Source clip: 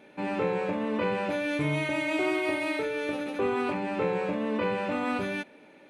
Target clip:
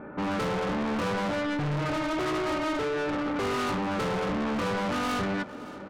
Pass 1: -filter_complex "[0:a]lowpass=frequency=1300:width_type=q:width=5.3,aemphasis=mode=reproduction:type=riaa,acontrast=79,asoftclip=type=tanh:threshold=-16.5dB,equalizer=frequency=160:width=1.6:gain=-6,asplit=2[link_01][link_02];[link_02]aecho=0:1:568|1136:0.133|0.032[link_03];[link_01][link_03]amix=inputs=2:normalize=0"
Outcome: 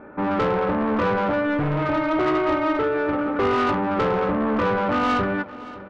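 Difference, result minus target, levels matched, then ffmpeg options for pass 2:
soft clipping: distortion −6 dB; 125 Hz band −2.5 dB
-filter_complex "[0:a]lowpass=frequency=1300:width_type=q:width=5.3,aemphasis=mode=reproduction:type=riaa,acontrast=79,asoftclip=type=tanh:threshold=-27.5dB,asplit=2[link_01][link_02];[link_02]aecho=0:1:568|1136:0.133|0.032[link_03];[link_01][link_03]amix=inputs=2:normalize=0"

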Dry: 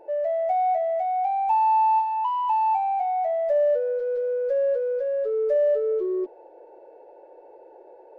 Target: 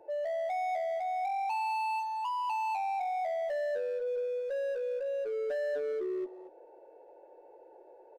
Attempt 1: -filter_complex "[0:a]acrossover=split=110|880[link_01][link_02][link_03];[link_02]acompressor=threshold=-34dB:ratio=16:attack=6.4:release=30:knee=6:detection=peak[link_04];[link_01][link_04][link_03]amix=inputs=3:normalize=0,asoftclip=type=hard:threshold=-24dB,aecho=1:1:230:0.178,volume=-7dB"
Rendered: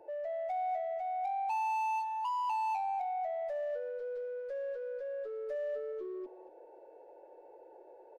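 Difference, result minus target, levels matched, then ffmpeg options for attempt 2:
downward compressor: peak gain reduction +10 dB
-filter_complex "[0:a]acrossover=split=110|880[link_01][link_02][link_03];[link_02]acompressor=threshold=-23dB:ratio=16:attack=6.4:release=30:knee=6:detection=peak[link_04];[link_01][link_04][link_03]amix=inputs=3:normalize=0,asoftclip=type=hard:threshold=-24dB,aecho=1:1:230:0.178,volume=-7dB"

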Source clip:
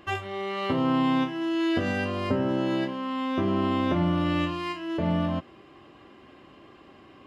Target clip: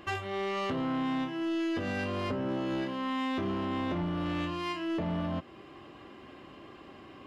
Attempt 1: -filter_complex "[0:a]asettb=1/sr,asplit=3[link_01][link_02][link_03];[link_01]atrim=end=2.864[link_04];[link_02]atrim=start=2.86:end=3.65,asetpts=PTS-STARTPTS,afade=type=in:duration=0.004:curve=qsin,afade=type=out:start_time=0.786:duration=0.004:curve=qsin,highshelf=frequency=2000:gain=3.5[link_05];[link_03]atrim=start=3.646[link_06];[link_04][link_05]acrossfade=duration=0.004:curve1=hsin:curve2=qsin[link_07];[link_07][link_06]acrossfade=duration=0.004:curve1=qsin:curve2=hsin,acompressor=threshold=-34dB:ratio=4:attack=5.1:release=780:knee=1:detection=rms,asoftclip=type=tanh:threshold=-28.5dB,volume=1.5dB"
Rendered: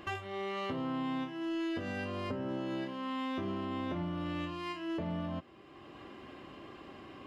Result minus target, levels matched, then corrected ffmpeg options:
downward compressor: peak gain reduction +6.5 dB
-filter_complex "[0:a]asettb=1/sr,asplit=3[link_01][link_02][link_03];[link_01]atrim=end=2.864[link_04];[link_02]atrim=start=2.86:end=3.65,asetpts=PTS-STARTPTS,afade=type=in:duration=0.004:curve=qsin,afade=type=out:start_time=0.786:duration=0.004:curve=qsin,highshelf=frequency=2000:gain=3.5[link_05];[link_03]atrim=start=3.646[link_06];[link_04][link_05]acrossfade=duration=0.004:curve1=hsin:curve2=qsin[link_07];[link_07][link_06]acrossfade=duration=0.004:curve1=qsin:curve2=hsin,acompressor=threshold=-25.5dB:ratio=4:attack=5.1:release=780:knee=1:detection=rms,asoftclip=type=tanh:threshold=-28.5dB,volume=1.5dB"

